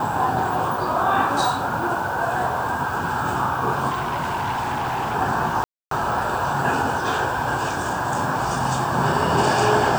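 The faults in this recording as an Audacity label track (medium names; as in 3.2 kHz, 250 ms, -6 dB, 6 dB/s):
3.890000	5.160000	clipped -21 dBFS
5.640000	5.910000	dropout 273 ms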